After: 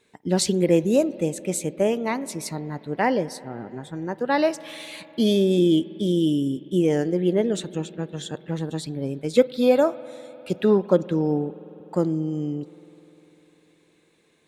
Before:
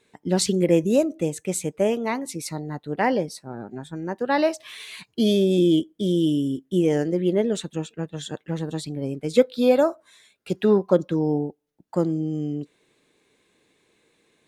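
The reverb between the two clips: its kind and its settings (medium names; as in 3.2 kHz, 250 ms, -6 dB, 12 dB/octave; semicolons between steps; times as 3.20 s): spring tank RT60 4 s, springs 50 ms, chirp 70 ms, DRR 17.5 dB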